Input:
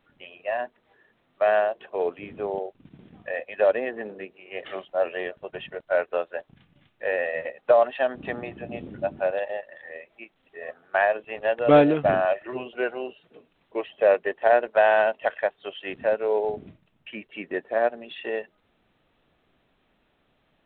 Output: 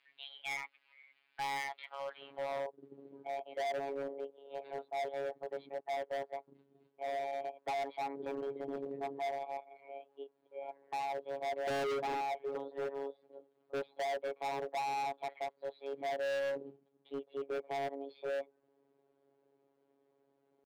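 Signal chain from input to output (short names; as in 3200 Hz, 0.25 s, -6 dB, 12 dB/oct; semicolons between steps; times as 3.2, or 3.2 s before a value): vibrato 1.6 Hz 31 cents; robotiser 110 Hz; band-pass sweep 1900 Hz -> 330 Hz, 1.99–2.72; pitch shift +4 st; hard clip -37.5 dBFS, distortion -3 dB; gain +4 dB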